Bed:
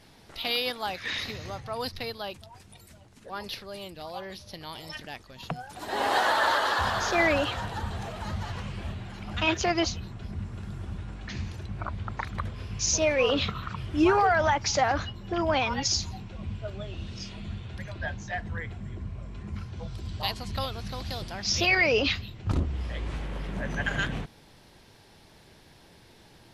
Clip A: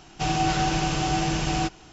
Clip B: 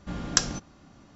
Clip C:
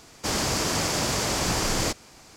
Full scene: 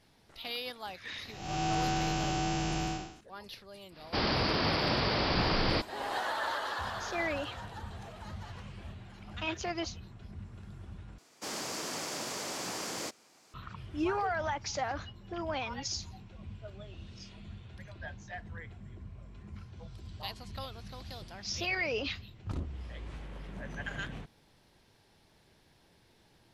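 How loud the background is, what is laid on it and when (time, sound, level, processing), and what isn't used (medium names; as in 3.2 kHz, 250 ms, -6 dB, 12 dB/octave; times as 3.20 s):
bed -10 dB
1.29 s: add A -6 dB + spectral blur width 243 ms
3.89 s: add C -2.5 dB, fades 0.10 s + resampled via 11.025 kHz
11.18 s: replace with C -11.5 dB + high-pass 220 Hz
not used: B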